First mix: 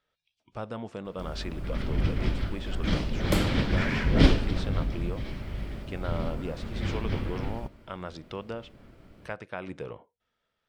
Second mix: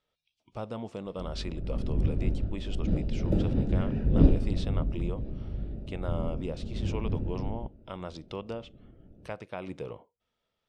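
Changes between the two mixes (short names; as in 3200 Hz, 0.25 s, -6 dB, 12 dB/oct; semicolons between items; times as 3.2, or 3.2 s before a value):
background: add running mean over 41 samples; master: add bell 1600 Hz -8 dB 0.67 oct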